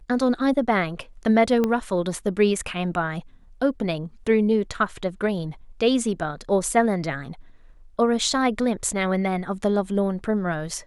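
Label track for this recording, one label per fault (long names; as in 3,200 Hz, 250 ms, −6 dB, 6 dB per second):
1.640000	1.640000	click −11 dBFS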